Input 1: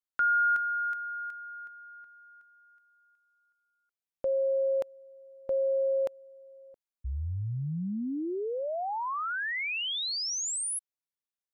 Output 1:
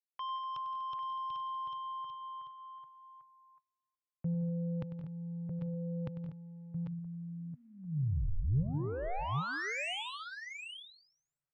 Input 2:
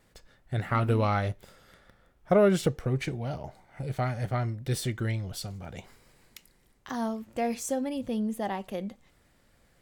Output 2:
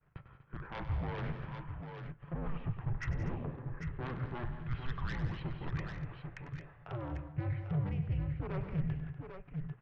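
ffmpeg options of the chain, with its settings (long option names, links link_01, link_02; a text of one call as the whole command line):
ffmpeg -i in.wav -filter_complex "[0:a]agate=range=-33dB:threshold=-59dB:ratio=3:release=76:detection=rms,aemphasis=mode=reproduction:type=75fm,highpass=frequency=370:width_type=q:width=0.5412,highpass=frequency=370:width_type=q:width=1.307,lowpass=frequency=2900:width_type=q:width=0.5176,lowpass=frequency=2900:width_type=q:width=0.7071,lowpass=frequency=2900:width_type=q:width=1.932,afreqshift=-370,areverse,acompressor=threshold=-44dB:ratio=6:release=500:knee=6:detection=rms,areverse,aeval=exprs='0.0133*sin(PI/2*1.78*val(0)/0.0133)':channel_layout=same,lowshelf=frequency=180:width_type=q:width=3:gain=6,asplit=2[link_01][link_02];[link_02]aecho=0:1:98|169|190|243|790|797:0.251|0.188|0.178|0.188|0.168|0.398[link_03];[link_01][link_03]amix=inputs=2:normalize=0,volume=1dB" out.wav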